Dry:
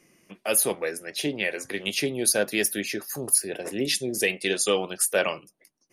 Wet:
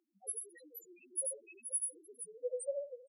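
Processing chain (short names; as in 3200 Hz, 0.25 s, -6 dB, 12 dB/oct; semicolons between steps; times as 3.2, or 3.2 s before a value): one-sided fold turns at -13 dBFS; granular stretch 0.52×, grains 54 ms; level quantiser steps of 23 dB; flange 0.39 Hz, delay 2.9 ms, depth 6.4 ms, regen 0%; tapped delay 82/86/116/477 ms -7.5/-9/-10/-9.5 dB; two-slope reverb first 0.39 s, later 4.2 s, from -17 dB, DRR 10 dB; loudest bins only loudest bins 1; HPF 510 Hz 12 dB/oct; record warp 45 rpm, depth 160 cents; gain +6.5 dB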